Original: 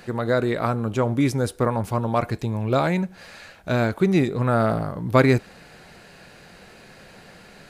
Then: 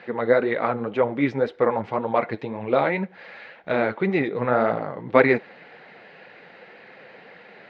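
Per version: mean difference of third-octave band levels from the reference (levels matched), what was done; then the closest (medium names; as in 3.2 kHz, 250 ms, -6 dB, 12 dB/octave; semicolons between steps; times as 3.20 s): 6.0 dB: flange 1.9 Hz, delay 0.5 ms, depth 9.3 ms, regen +40%; cabinet simulation 220–3500 Hz, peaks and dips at 490 Hz +6 dB, 830 Hz +4 dB, 2 kHz +8 dB; trim +2.5 dB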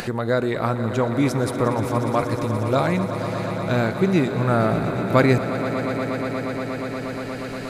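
8.5 dB: echo with a slow build-up 119 ms, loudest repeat 5, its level -13 dB; upward compressor, threshold -21 dBFS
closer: first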